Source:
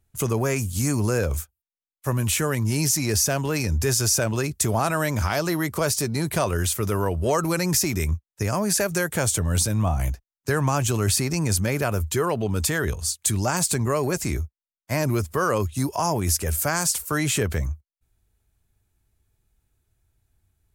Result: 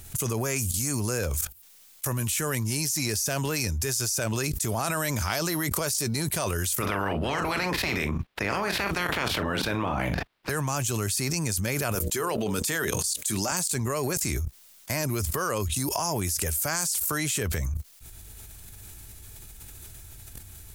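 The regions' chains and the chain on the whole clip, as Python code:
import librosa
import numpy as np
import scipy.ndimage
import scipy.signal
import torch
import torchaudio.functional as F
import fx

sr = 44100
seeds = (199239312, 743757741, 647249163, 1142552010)

y = fx.spec_clip(x, sr, under_db=23, at=(6.8, 10.49), fade=0.02)
y = fx.air_absorb(y, sr, metres=410.0, at=(6.8, 10.49), fade=0.02)
y = fx.doubler(y, sr, ms=40.0, db=-9.0, at=(6.8, 10.49), fade=0.02)
y = fx.chain(y, sr, fx.highpass(hz=180.0, slope=12),
    fx.hum_notches(base_hz=60, count=10), at=(11.95, 13.52))
y = fx.level_steps(y, sr, step_db=16)
y = fx.high_shelf(y, sr, hz=2600.0, db=10.5)
y = fx.env_flatten(y, sr, amount_pct=100)
y = y * librosa.db_to_amplitude(-6.5)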